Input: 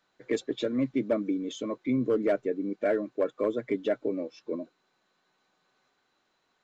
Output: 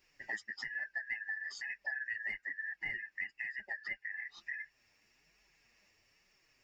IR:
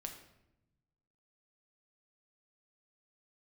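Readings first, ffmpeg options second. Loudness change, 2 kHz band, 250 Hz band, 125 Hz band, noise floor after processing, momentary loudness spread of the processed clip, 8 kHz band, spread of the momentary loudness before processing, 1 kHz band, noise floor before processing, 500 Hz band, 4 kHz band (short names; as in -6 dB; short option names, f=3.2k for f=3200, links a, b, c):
-9.5 dB, +8.0 dB, -37.0 dB, under -25 dB, -75 dBFS, 5 LU, n/a, 9 LU, -16.0 dB, -74 dBFS, -35.5 dB, -7.5 dB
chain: -af "afftfilt=real='real(if(lt(b,272),68*(eq(floor(b/68),0)*1+eq(floor(b/68),1)*0+eq(floor(b/68),2)*3+eq(floor(b/68),3)*2)+mod(b,68),b),0)':imag='imag(if(lt(b,272),68*(eq(floor(b/68),0)*1+eq(floor(b/68),1)*0+eq(floor(b/68),2)*3+eq(floor(b/68),3)*2)+mod(b,68),b),0)':win_size=2048:overlap=0.75,adynamicequalizer=threshold=0.00178:dfrequency=6400:dqfactor=1.9:tfrequency=6400:tqfactor=1.9:attack=5:release=100:ratio=0.375:range=3:mode=cutabove:tftype=bell,acompressor=threshold=-41dB:ratio=5,crystalizer=i=1:c=0,flanger=delay=4.5:depth=5.9:regen=-3:speed=1.1:shape=triangular,volume=4dB"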